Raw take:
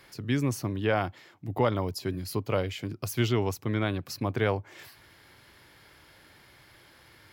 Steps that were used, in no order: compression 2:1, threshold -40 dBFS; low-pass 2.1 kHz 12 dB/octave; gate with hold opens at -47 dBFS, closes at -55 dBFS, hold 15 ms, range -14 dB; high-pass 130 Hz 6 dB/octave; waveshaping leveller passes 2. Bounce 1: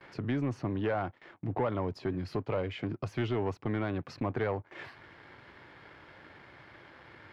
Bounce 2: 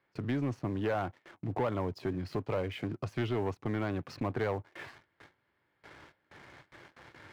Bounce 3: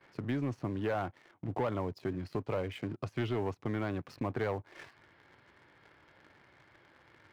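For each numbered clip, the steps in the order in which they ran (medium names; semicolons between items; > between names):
high-pass > compression > gate with hold > waveshaping leveller > low-pass; low-pass > compression > gate with hold > high-pass > waveshaping leveller; high-pass > gate with hold > low-pass > waveshaping leveller > compression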